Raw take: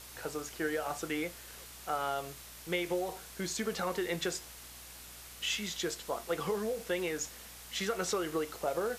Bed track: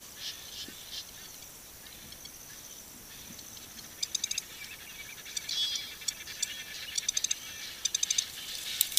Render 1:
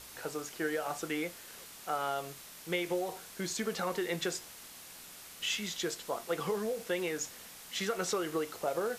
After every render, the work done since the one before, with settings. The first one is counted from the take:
hum removal 60 Hz, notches 2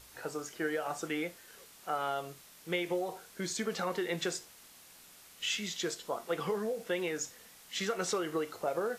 noise reduction from a noise print 6 dB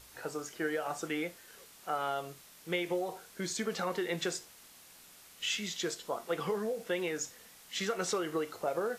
no processing that can be heard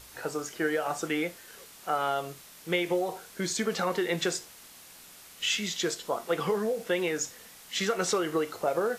level +5.5 dB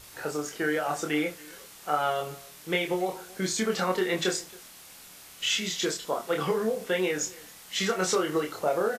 double-tracking delay 27 ms −3 dB
slap from a distant wall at 47 metres, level −23 dB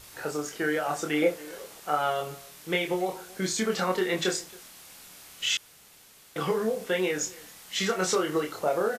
0:01.22–0:01.80: parametric band 530 Hz +11.5 dB 1.5 octaves
0:05.57–0:06.36: fill with room tone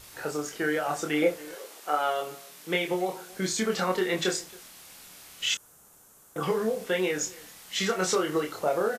0:01.54–0:03.31: high-pass filter 290 Hz → 110 Hz 24 dB per octave
0:05.54–0:06.43: flat-topped bell 3,100 Hz −12.5 dB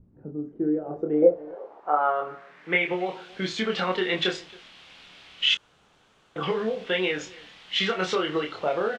running median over 3 samples
low-pass filter sweep 220 Hz → 3,200 Hz, 0:00.26–0:03.19

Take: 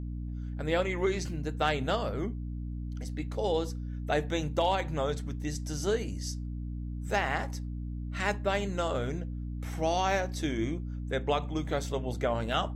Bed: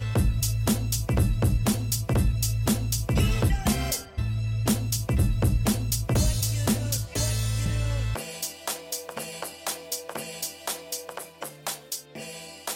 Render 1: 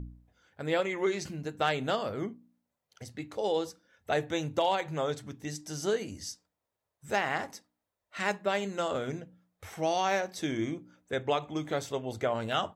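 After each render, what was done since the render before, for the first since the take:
hum removal 60 Hz, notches 5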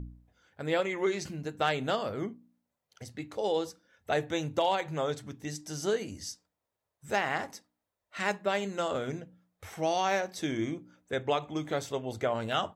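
no processing that can be heard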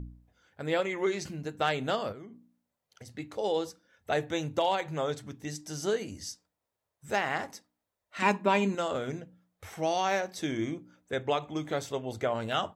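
0:02.12–0:03.11: downward compressor 8 to 1, threshold −42 dBFS
0:08.22–0:08.75: hollow resonant body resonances 260/950/2,400 Hz, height 15 dB, ringing for 30 ms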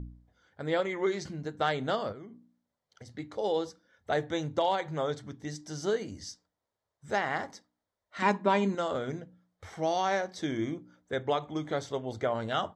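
low-pass filter 5,900 Hz 12 dB per octave
parametric band 2,600 Hz −13 dB 0.2 octaves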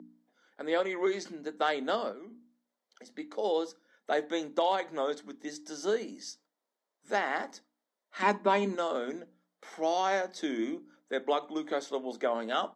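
Butterworth high-pass 210 Hz 48 dB per octave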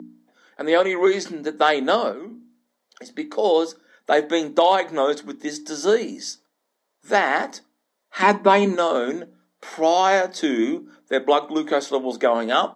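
level +11.5 dB
brickwall limiter −3 dBFS, peak gain reduction 2 dB

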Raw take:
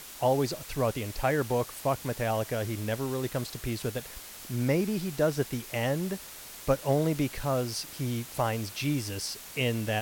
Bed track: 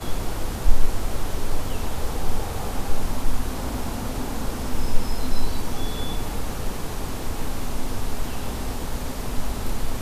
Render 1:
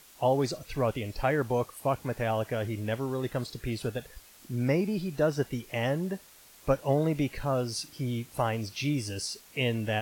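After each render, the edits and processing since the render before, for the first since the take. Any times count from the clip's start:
noise reduction from a noise print 10 dB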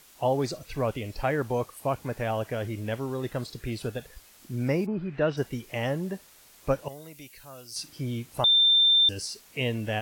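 0:04.85–0:05.36: low-pass with resonance 960 Hz → 3,600 Hz, resonance Q 2.9
0:06.88–0:07.76: first-order pre-emphasis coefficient 0.9
0:08.44–0:09.09: beep over 3,580 Hz −16.5 dBFS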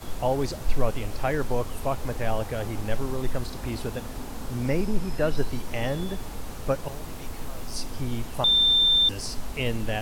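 mix in bed track −8 dB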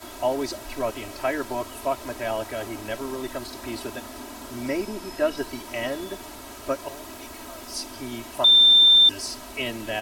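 high-pass filter 340 Hz 6 dB per octave
comb filter 3.1 ms, depth 95%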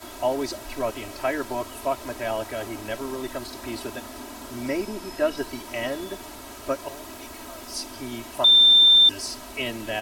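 no processing that can be heard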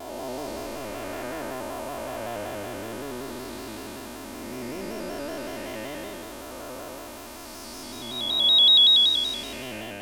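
spectrum smeared in time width 533 ms
pitch modulation by a square or saw wave square 5.3 Hz, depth 100 cents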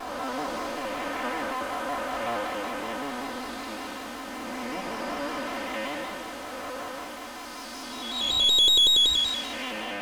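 lower of the sound and its delayed copy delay 3.9 ms
mid-hump overdrive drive 13 dB, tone 2,300 Hz, clips at −9.5 dBFS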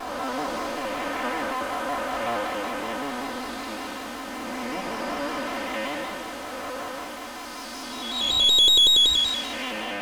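level +2.5 dB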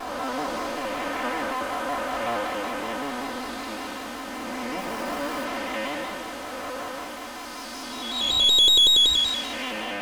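0:04.78–0:05.45: gap after every zero crossing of 0.07 ms

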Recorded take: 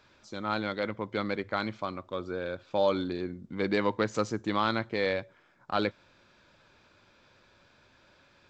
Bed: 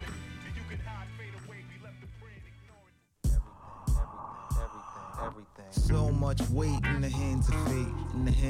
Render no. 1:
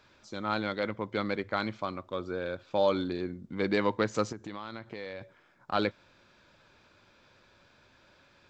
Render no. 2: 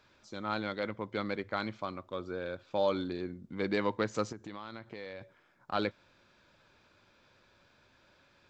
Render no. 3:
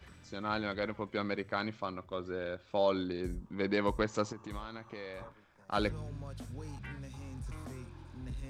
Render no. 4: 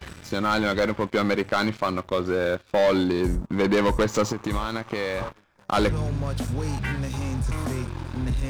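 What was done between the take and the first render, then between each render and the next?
0:04.32–0:05.21: downward compressor 4 to 1, threshold −38 dBFS
level −3.5 dB
mix in bed −15 dB
leveller curve on the samples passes 3; in parallel at +2 dB: downward compressor, threshold −32 dBFS, peak gain reduction 11.5 dB

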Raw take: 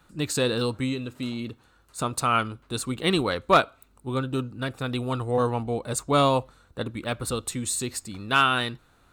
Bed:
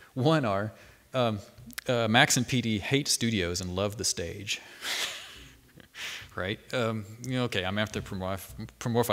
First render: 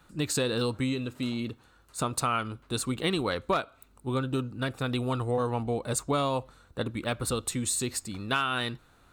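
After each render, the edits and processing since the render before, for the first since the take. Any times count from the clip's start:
downward compressor 6 to 1, threshold −24 dBFS, peak gain reduction 11 dB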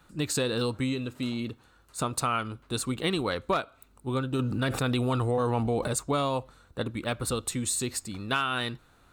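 0:04.39–0:05.88: envelope flattener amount 70%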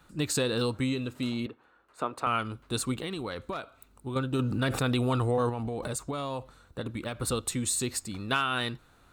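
0:01.46–0:02.27: three-way crossover with the lows and the highs turned down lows −17 dB, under 260 Hz, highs −19 dB, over 2,700 Hz
0:03.00–0:04.16: downward compressor, threshold −31 dBFS
0:05.49–0:07.20: downward compressor 10 to 1, threshold −29 dBFS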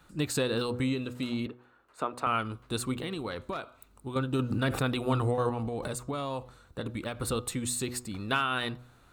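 hum removal 122.8 Hz, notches 10
dynamic equaliser 6,400 Hz, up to −5 dB, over −46 dBFS, Q 0.83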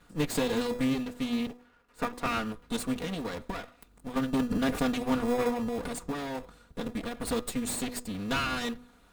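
lower of the sound and its delayed copy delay 4.2 ms
in parallel at −9 dB: decimation without filtering 30×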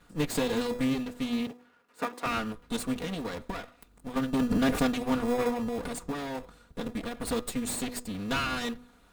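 0:01.43–0:02.25: high-pass filter 83 Hz → 320 Hz
0:04.41–0:04.87: leveller curve on the samples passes 1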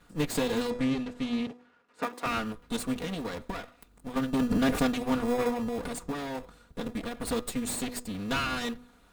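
0:00.70–0:02.03: high-frequency loss of the air 55 metres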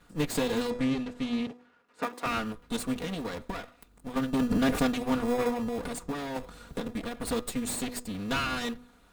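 0:06.36–0:06.95: multiband upward and downward compressor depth 100%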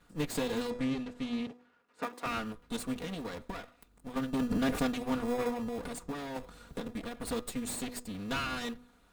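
level −4.5 dB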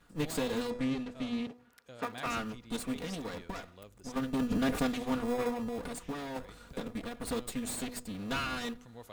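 mix in bed −24 dB

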